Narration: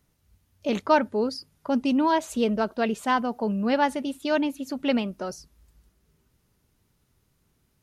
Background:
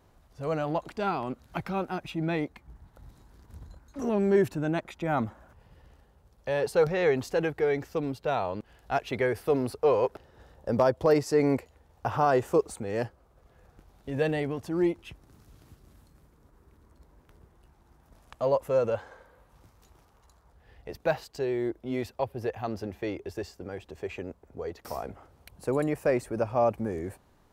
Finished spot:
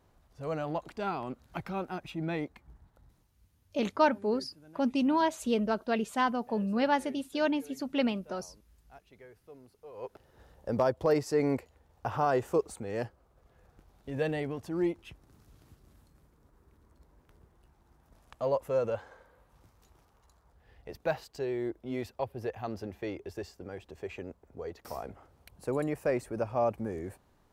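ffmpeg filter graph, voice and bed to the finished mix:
-filter_complex "[0:a]adelay=3100,volume=-4.5dB[a];[1:a]volume=18dB,afade=t=out:st=2.67:d=0.68:silence=0.0794328,afade=t=in:st=9.93:d=0.45:silence=0.0749894[b];[a][b]amix=inputs=2:normalize=0"

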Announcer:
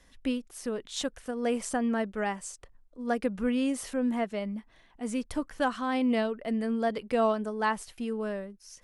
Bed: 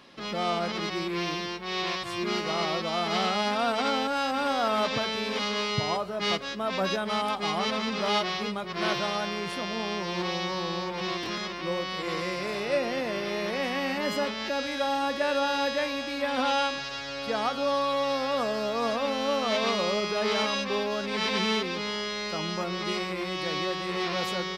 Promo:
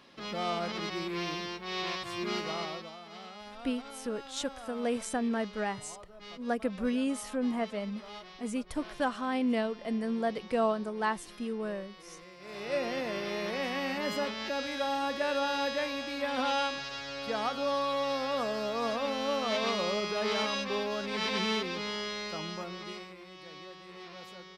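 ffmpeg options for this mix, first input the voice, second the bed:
-filter_complex "[0:a]adelay=3400,volume=-2.5dB[a];[1:a]volume=11.5dB,afade=t=out:st=2.4:d=0.58:silence=0.16788,afade=t=in:st=12.39:d=0.43:silence=0.158489,afade=t=out:st=22.09:d=1.09:silence=0.211349[b];[a][b]amix=inputs=2:normalize=0"

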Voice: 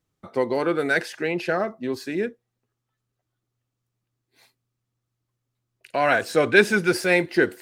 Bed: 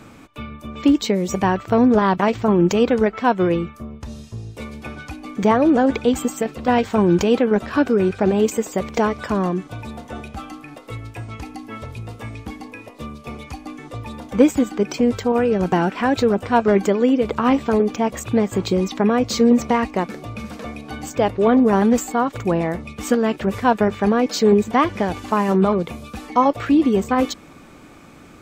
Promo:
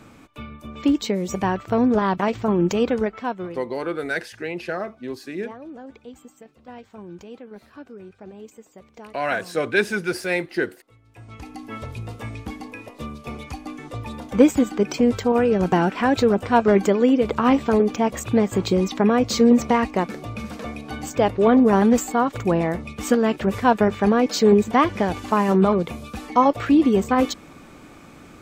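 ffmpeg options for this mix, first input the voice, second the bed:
-filter_complex "[0:a]adelay=3200,volume=-4dB[a];[1:a]volume=19dB,afade=t=out:st=2.9:d=0.73:silence=0.105925,afade=t=in:st=11.06:d=0.68:silence=0.0707946[b];[a][b]amix=inputs=2:normalize=0"

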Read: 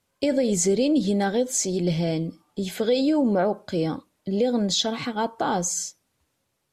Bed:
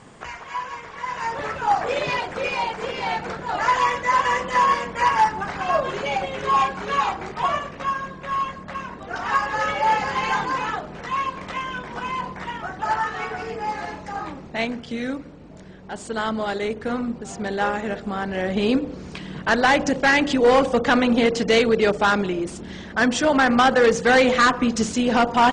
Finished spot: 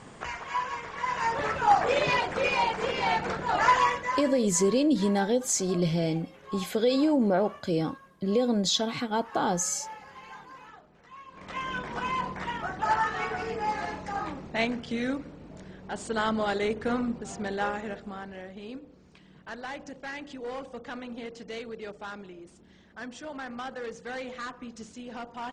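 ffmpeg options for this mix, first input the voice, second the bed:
-filter_complex "[0:a]adelay=3950,volume=-2.5dB[a];[1:a]volume=19.5dB,afade=t=out:st=3.65:d=0.66:silence=0.0794328,afade=t=in:st=11.28:d=0.48:silence=0.0944061,afade=t=out:st=16.9:d=1.64:silence=0.11885[b];[a][b]amix=inputs=2:normalize=0"

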